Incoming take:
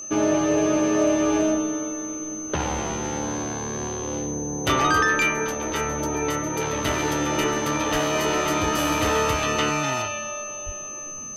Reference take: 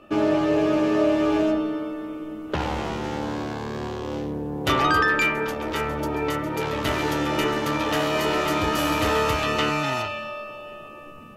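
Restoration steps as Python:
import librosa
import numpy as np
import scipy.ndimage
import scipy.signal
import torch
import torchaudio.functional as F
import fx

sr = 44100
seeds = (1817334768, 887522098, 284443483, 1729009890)

y = fx.fix_declip(x, sr, threshold_db=-12.0)
y = fx.notch(y, sr, hz=6200.0, q=30.0)
y = fx.highpass(y, sr, hz=140.0, slope=24, at=(7.92, 8.04), fade=0.02)
y = fx.highpass(y, sr, hz=140.0, slope=24, at=(10.65, 10.77), fade=0.02)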